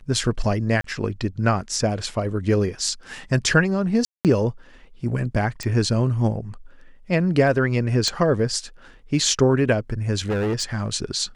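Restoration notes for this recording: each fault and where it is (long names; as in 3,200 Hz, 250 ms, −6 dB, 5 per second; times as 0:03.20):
0:00.81–0:00.84: drop-out 33 ms
0:04.05–0:04.25: drop-out 198 ms
0:05.63: click
0:08.08: click −10 dBFS
0:10.28–0:10.88: clipping −19.5 dBFS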